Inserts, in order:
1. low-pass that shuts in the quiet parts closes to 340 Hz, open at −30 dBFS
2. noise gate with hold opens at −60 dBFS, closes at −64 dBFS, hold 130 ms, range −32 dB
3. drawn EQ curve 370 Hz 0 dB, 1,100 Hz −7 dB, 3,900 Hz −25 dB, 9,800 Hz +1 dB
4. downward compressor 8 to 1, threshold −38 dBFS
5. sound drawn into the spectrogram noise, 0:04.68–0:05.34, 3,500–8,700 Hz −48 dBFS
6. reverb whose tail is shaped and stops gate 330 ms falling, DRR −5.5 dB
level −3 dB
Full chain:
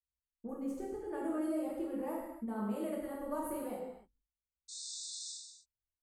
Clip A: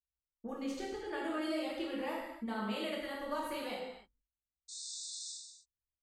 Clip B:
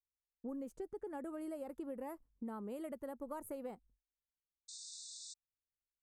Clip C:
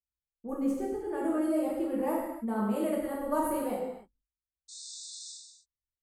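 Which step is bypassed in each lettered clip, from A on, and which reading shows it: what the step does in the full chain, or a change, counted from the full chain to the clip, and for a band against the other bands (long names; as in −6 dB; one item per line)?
3, 2 kHz band +11.0 dB
6, change in momentary loudness spread −4 LU
4, average gain reduction 7.0 dB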